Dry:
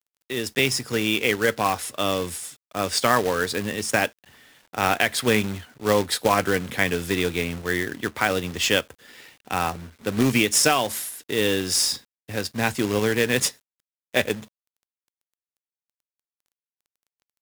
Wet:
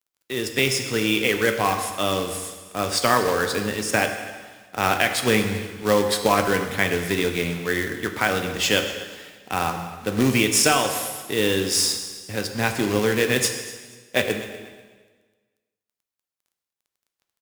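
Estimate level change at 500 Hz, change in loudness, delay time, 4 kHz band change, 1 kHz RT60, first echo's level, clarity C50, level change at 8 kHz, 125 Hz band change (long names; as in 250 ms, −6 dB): +1.5 dB, +1.0 dB, 242 ms, +1.0 dB, 1.4 s, −18.5 dB, 7.5 dB, +1.0 dB, +1.5 dB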